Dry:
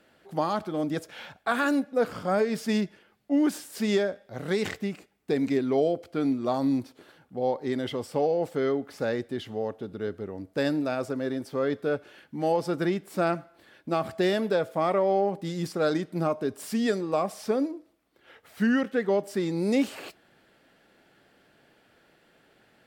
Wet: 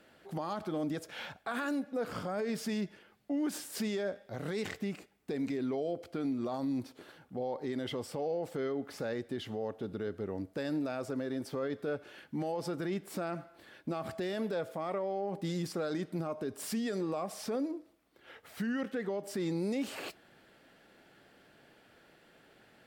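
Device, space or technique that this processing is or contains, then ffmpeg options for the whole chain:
stacked limiters: -af "alimiter=limit=-19.5dB:level=0:latency=1:release=60,alimiter=limit=-22.5dB:level=0:latency=1:release=261,alimiter=level_in=3dB:limit=-24dB:level=0:latency=1:release=80,volume=-3dB"

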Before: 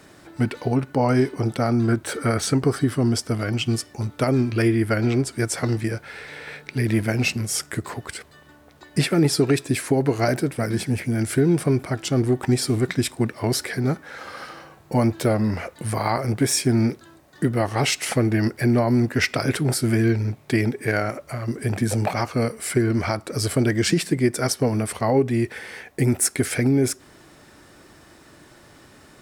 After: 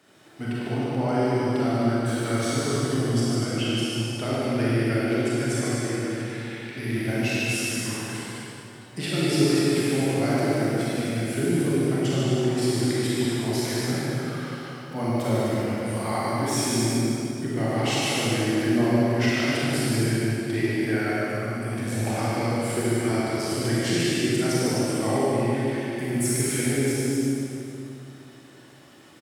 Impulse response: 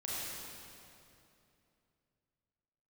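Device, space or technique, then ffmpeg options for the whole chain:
stadium PA: -filter_complex "[0:a]highpass=140,equalizer=frequency=3100:width_type=o:width=0.41:gain=6,aecho=1:1:148.7|253.6:0.562|0.355[link_01];[1:a]atrim=start_sample=2205[link_02];[link_01][link_02]afir=irnorm=-1:irlink=0,volume=-6.5dB"

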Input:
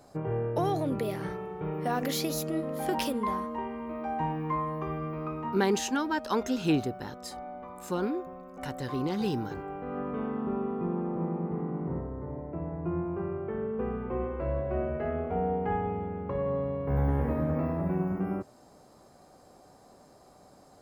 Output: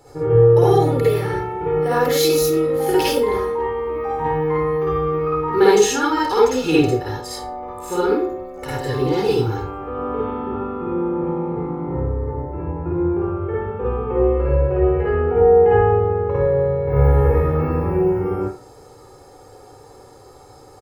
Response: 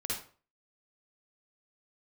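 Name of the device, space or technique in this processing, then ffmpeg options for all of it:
microphone above a desk: -filter_complex "[0:a]aecho=1:1:2.3:0.87[link_01];[1:a]atrim=start_sample=2205[link_02];[link_01][link_02]afir=irnorm=-1:irlink=0,volume=6.5dB"

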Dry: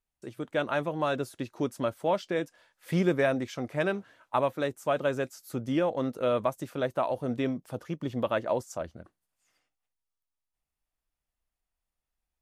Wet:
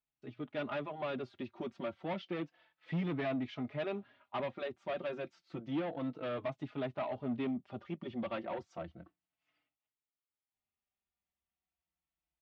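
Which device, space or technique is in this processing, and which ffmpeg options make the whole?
barber-pole flanger into a guitar amplifier: -filter_complex "[0:a]asplit=2[link_01][link_02];[link_02]adelay=4.2,afreqshift=-0.31[link_03];[link_01][link_03]amix=inputs=2:normalize=1,asoftclip=type=tanh:threshold=-29dB,highpass=81,equalizer=frequency=110:width_type=q:width=4:gain=-5,equalizer=frequency=490:width_type=q:width=4:gain=-9,equalizer=frequency=1000:width_type=q:width=4:gain=-4,equalizer=frequency=1600:width_type=q:width=4:gain=-6,lowpass=frequency=3500:width=0.5412,lowpass=frequency=3500:width=1.3066"

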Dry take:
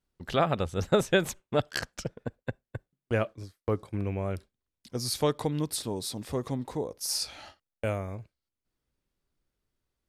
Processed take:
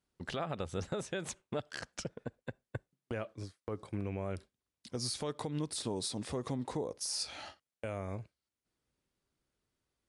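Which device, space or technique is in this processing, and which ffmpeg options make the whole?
podcast mastering chain: -af "highpass=frequency=93:poles=1,deesser=0.5,acompressor=threshold=-31dB:ratio=3,alimiter=level_in=3dB:limit=-24dB:level=0:latency=1:release=130,volume=-3dB,volume=1dB" -ar 24000 -c:a libmp3lame -b:a 96k

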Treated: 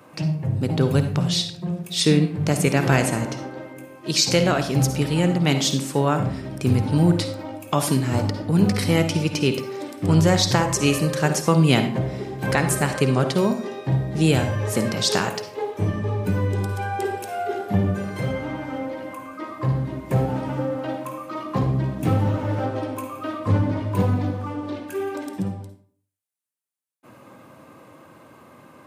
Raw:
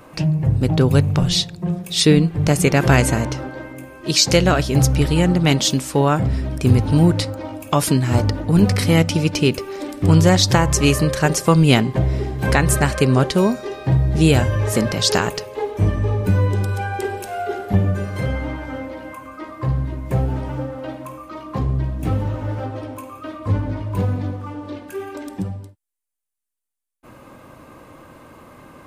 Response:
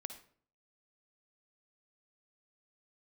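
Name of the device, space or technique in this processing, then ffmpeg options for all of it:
far laptop microphone: -filter_complex "[1:a]atrim=start_sample=2205[link_01];[0:a][link_01]afir=irnorm=-1:irlink=0,highpass=frequency=100:width=0.5412,highpass=frequency=100:width=1.3066,dynaudnorm=framelen=430:gausssize=21:maxgain=8dB,volume=-1dB"

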